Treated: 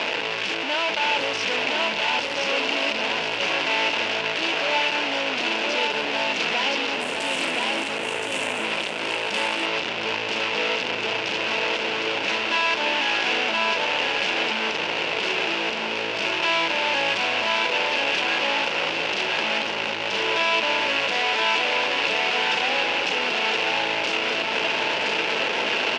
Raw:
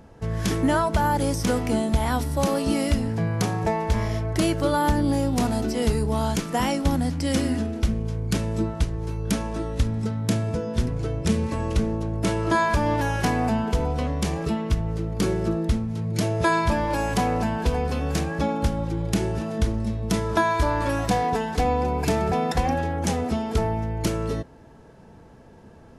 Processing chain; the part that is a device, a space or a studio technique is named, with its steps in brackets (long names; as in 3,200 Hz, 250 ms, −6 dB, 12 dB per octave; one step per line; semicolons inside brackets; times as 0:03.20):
hum removal 57 Hz, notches 4
home computer beeper (sign of each sample alone; loudspeaker in its box 670–4,500 Hz, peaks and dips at 740 Hz −6 dB, 1,200 Hz −10 dB, 1,800 Hz −4 dB, 2,700 Hz +9 dB, 4,000 Hz −4 dB)
0:07.00–0:08.64: high shelf with overshoot 6,800 Hz +11.5 dB, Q 3
single-tap delay 1,021 ms −3 dB
level +5.5 dB